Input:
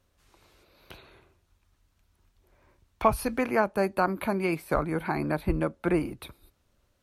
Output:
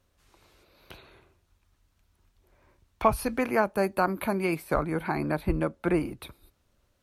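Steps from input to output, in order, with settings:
0:03.41–0:04.63: high-shelf EQ 11,000 Hz +8 dB

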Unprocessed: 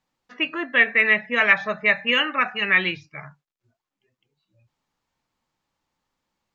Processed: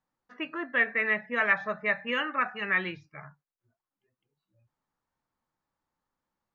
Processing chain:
high shelf with overshoot 2,000 Hz −6 dB, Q 1.5
level −6.5 dB

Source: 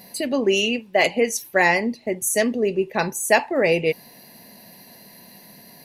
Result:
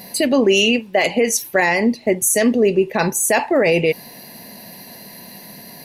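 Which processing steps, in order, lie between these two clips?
brickwall limiter −14.5 dBFS, peak gain reduction 10.5 dB
level +8 dB

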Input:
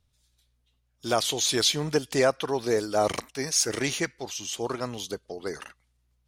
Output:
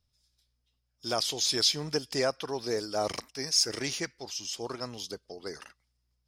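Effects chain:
parametric band 5,100 Hz +13.5 dB 0.25 octaves
level −6.5 dB

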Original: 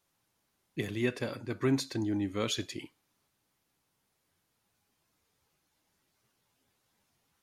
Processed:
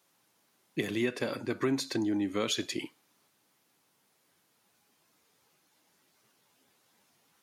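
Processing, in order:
high-pass filter 180 Hz 12 dB per octave
downward compressor 3 to 1, threshold −35 dBFS, peak gain reduction 8.5 dB
level +7 dB

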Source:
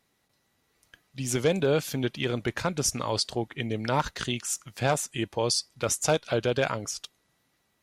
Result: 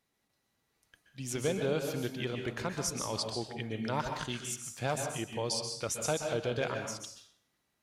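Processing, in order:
dense smooth reverb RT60 0.57 s, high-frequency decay 0.9×, pre-delay 115 ms, DRR 4 dB
level −8 dB

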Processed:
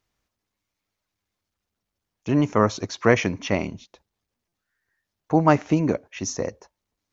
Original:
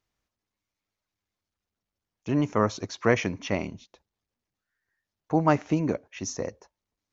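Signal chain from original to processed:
buffer that repeats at 0:04.48, samples 256, times 6
level +4.5 dB

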